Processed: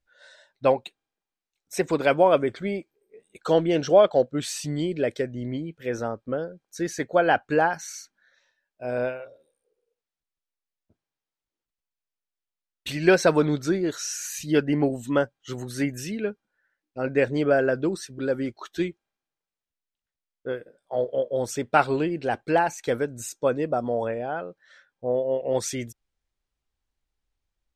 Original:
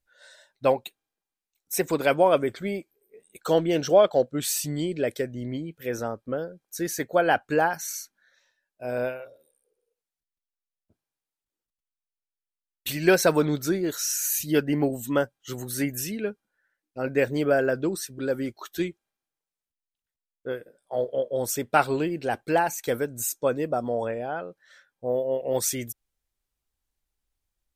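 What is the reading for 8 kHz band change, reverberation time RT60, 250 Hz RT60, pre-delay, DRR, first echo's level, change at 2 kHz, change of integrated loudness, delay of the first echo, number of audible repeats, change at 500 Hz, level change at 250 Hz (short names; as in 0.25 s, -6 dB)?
-5.0 dB, none, none, none, none, none, +1.0 dB, +1.0 dB, none, none, +1.5 dB, +1.5 dB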